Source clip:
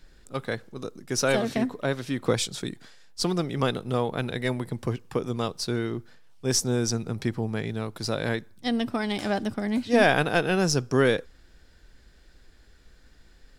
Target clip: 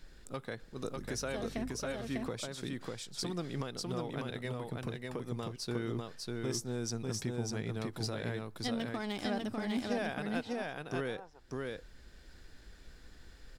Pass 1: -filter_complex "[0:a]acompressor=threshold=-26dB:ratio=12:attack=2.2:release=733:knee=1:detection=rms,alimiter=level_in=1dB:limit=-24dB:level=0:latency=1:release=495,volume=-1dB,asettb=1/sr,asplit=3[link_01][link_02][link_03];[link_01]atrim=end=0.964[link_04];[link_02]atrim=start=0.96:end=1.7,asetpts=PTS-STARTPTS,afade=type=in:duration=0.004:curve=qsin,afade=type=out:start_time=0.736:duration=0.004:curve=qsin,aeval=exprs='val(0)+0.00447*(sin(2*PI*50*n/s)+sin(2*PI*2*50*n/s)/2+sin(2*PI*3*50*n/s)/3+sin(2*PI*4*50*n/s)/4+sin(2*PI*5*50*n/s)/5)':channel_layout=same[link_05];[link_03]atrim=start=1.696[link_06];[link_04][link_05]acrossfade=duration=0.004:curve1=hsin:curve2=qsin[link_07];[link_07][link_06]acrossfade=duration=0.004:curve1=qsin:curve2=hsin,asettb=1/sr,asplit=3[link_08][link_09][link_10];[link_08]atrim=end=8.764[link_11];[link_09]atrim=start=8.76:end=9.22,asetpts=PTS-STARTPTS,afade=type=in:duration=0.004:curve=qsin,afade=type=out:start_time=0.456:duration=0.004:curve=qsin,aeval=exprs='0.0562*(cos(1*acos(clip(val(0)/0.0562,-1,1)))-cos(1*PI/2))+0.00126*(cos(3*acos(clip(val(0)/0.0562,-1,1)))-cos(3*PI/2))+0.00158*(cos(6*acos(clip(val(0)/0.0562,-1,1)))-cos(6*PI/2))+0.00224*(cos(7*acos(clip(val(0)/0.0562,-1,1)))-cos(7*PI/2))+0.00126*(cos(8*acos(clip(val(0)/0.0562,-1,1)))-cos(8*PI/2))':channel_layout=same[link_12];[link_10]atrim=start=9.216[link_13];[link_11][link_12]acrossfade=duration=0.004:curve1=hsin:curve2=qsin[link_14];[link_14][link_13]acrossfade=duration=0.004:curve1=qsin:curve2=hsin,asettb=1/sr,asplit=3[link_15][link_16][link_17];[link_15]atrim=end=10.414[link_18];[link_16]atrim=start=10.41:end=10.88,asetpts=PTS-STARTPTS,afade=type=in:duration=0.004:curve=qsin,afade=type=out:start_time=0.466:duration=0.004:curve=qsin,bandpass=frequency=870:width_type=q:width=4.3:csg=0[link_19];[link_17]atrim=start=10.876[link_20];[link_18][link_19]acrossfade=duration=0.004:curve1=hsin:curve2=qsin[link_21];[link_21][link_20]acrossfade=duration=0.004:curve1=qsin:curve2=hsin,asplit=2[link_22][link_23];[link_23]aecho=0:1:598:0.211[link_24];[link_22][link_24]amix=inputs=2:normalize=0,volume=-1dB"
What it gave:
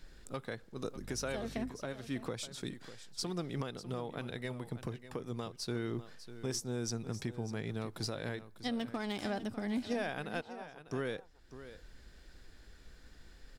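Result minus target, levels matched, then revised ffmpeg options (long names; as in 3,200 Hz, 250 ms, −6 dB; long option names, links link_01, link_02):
echo-to-direct −11 dB
-filter_complex "[0:a]acompressor=threshold=-26dB:ratio=12:attack=2.2:release=733:knee=1:detection=rms,alimiter=level_in=1dB:limit=-24dB:level=0:latency=1:release=495,volume=-1dB,asettb=1/sr,asplit=3[link_01][link_02][link_03];[link_01]atrim=end=0.964[link_04];[link_02]atrim=start=0.96:end=1.7,asetpts=PTS-STARTPTS,afade=type=in:duration=0.004:curve=qsin,afade=type=out:start_time=0.736:duration=0.004:curve=qsin,aeval=exprs='val(0)+0.00447*(sin(2*PI*50*n/s)+sin(2*PI*2*50*n/s)/2+sin(2*PI*3*50*n/s)/3+sin(2*PI*4*50*n/s)/4+sin(2*PI*5*50*n/s)/5)':channel_layout=same[link_05];[link_03]atrim=start=1.696[link_06];[link_04][link_05]acrossfade=duration=0.004:curve1=hsin:curve2=qsin[link_07];[link_07][link_06]acrossfade=duration=0.004:curve1=qsin:curve2=hsin,asettb=1/sr,asplit=3[link_08][link_09][link_10];[link_08]atrim=end=8.764[link_11];[link_09]atrim=start=8.76:end=9.22,asetpts=PTS-STARTPTS,afade=type=in:duration=0.004:curve=qsin,afade=type=out:start_time=0.456:duration=0.004:curve=qsin,aeval=exprs='0.0562*(cos(1*acos(clip(val(0)/0.0562,-1,1)))-cos(1*PI/2))+0.00126*(cos(3*acos(clip(val(0)/0.0562,-1,1)))-cos(3*PI/2))+0.00158*(cos(6*acos(clip(val(0)/0.0562,-1,1)))-cos(6*PI/2))+0.00224*(cos(7*acos(clip(val(0)/0.0562,-1,1)))-cos(7*PI/2))+0.00126*(cos(8*acos(clip(val(0)/0.0562,-1,1)))-cos(8*PI/2))':channel_layout=same[link_12];[link_10]atrim=start=9.216[link_13];[link_11][link_12]acrossfade=duration=0.004:curve1=hsin:curve2=qsin[link_14];[link_14][link_13]acrossfade=duration=0.004:curve1=qsin:curve2=hsin,asettb=1/sr,asplit=3[link_15][link_16][link_17];[link_15]atrim=end=10.414[link_18];[link_16]atrim=start=10.41:end=10.88,asetpts=PTS-STARTPTS,afade=type=in:duration=0.004:curve=qsin,afade=type=out:start_time=0.466:duration=0.004:curve=qsin,bandpass=frequency=870:width_type=q:width=4.3:csg=0[link_19];[link_17]atrim=start=10.876[link_20];[link_18][link_19]acrossfade=duration=0.004:curve1=hsin:curve2=qsin[link_21];[link_21][link_20]acrossfade=duration=0.004:curve1=qsin:curve2=hsin,asplit=2[link_22][link_23];[link_23]aecho=0:1:598:0.75[link_24];[link_22][link_24]amix=inputs=2:normalize=0,volume=-1dB"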